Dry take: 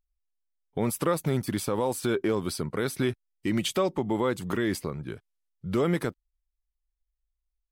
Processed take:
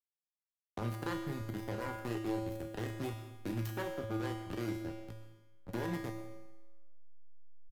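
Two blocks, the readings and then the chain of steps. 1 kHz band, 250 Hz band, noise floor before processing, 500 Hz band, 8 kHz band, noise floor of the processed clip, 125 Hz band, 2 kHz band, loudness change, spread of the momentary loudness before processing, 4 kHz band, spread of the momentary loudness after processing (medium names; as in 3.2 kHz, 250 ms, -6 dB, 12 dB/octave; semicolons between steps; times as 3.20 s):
-10.0 dB, -10.5 dB, -83 dBFS, -13.0 dB, -18.0 dB, under -85 dBFS, -7.5 dB, -9.5 dB, -11.0 dB, 9 LU, -14.0 dB, 11 LU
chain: self-modulated delay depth 0.47 ms; doubling 34 ms -5.5 dB; hysteresis with a dead band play -21.5 dBFS; peaking EQ 13 kHz +9 dB 0.56 oct; feedback comb 110 Hz, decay 0.76 s, harmonics odd, mix 90%; algorithmic reverb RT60 0.68 s, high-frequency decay 0.95×, pre-delay 70 ms, DRR 14 dB; three bands compressed up and down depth 70%; trim +4.5 dB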